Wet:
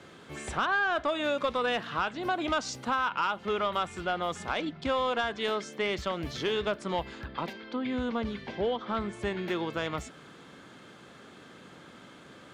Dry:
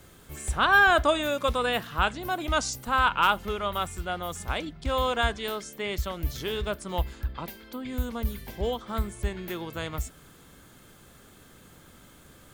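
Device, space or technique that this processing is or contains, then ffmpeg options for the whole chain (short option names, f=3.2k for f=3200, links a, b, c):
AM radio: -filter_complex "[0:a]highpass=180,lowpass=4.2k,acompressor=threshold=-29dB:ratio=6,asoftclip=type=tanh:threshold=-23dB,asettb=1/sr,asplit=3[a][b][c];[a]atrim=end=7.534[d];[b]atrim=start=7.53:end=9.13,asetpts=PTS-STARTPTS,afade=t=in:d=0.004:c=qsin,afade=t=out:st=1.596:d=0.004:c=qsin,lowpass=5.1k[e];[c]atrim=start=9.126[f];[d][e]acrossfade=d=0.004:c1=hsin:c2=qsin[g];[g][f]acrossfade=d=0.004:c1=qsin:c2=hsin,volume=5dB"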